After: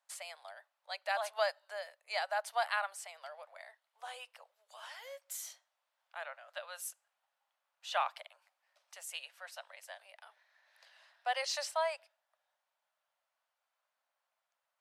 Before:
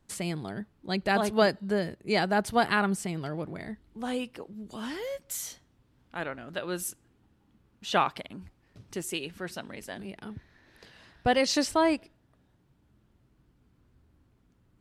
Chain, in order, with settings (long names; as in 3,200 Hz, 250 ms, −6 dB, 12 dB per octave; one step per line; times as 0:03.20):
Butterworth high-pass 570 Hz 72 dB per octave
level −7.5 dB